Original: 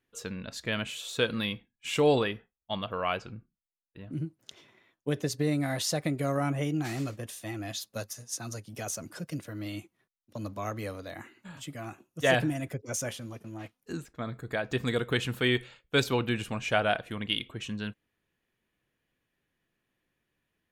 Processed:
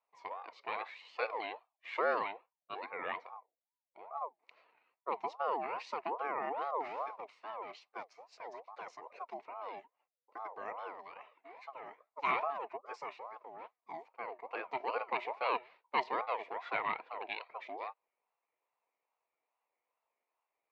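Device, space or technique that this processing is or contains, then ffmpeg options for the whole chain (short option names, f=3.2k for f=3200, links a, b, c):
voice changer toy: -af "aeval=exprs='val(0)*sin(2*PI*740*n/s+740*0.35/2.4*sin(2*PI*2.4*n/s))':c=same,highpass=430,equalizer=f=480:t=q:w=4:g=6,equalizer=f=690:t=q:w=4:g=3,equalizer=f=980:t=q:w=4:g=7,equalizer=f=1.5k:t=q:w=4:g=-4,equalizer=f=2.2k:t=q:w=4:g=6,equalizer=f=3.3k:t=q:w=4:g=-10,lowpass=f=3.6k:w=0.5412,lowpass=f=3.6k:w=1.3066,volume=-7dB"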